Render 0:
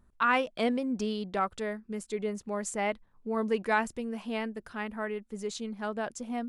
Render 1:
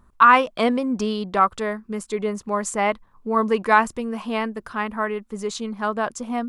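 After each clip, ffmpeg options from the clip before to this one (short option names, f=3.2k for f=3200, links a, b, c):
-af "equalizer=f=1.1k:w=2.7:g=9.5,volume=7.5dB"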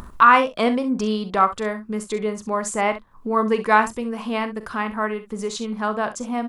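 -filter_complex "[0:a]acompressor=mode=upward:threshold=-24dB:ratio=2.5,asplit=2[a][b];[b]aecho=0:1:42|65:0.224|0.211[c];[a][c]amix=inputs=2:normalize=0"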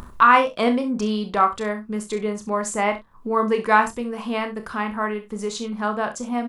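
-filter_complex "[0:a]asplit=2[a][b];[b]adelay=29,volume=-9.5dB[c];[a][c]amix=inputs=2:normalize=0,volume=-1dB"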